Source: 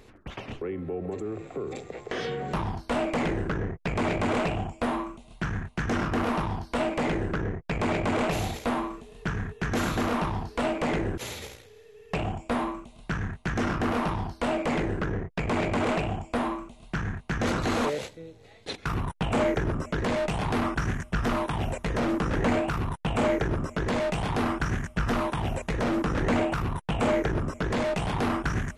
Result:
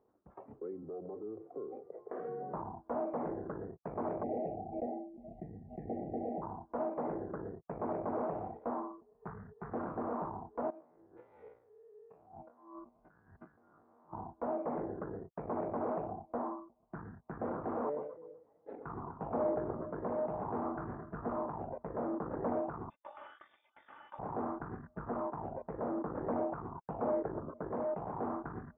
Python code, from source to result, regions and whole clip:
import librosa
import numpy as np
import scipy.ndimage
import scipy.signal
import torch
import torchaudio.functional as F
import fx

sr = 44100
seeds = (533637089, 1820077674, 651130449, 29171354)

y = fx.chain(x, sr, fx.overload_stage(gain_db=30.0),
    fx.band_squash(depth_pct=40), at=(0.83, 1.23))
y = fx.chain(y, sr, fx.cheby1_bandstop(low_hz=800.0, high_hz=1900.0, order=4),
    fx.high_shelf(hz=2400.0, db=-4.0),
    fx.pre_swell(db_per_s=39.0), at=(4.23, 6.42))
y = fx.chain(y, sr, fx.peak_eq(hz=310.0, db=-9.0, octaves=0.42),
    fx.doppler_dist(depth_ms=0.36), at=(9.14, 9.74))
y = fx.chain(y, sr, fx.spec_steps(hold_ms=50),
    fx.tilt_shelf(db=-3.5, hz=1400.0),
    fx.over_compress(threshold_db=-42.0, ratio=-1.0), at=(10.7, 14.13))
y = fx.chain(y, sr, fx.echo_alternate(ms=124, hz=1200.0, feedback_pct=56, wet_db=-7.5),
    fx.sustainer(db_per_s=63.0), at=(17.84, 21.49))
y = fx.chain(y, sr, fx.freq_invert(carrier_hz=3600),
    fx.comb(ms=3.4, depth=0.38), at=(22.9, 24.19))
y = fx.noise_reduce_blind(y, sr, reduce_db=9)
y = scipy.signal.sosfilt(scipy.signal.bessel(6, 590.0, 'lowpass', norm='mag', fs=sr, output='sos'), y)
y = np.diff(y, prepend=0.0)
y = y * librosa.db_to_amplitude(17.5)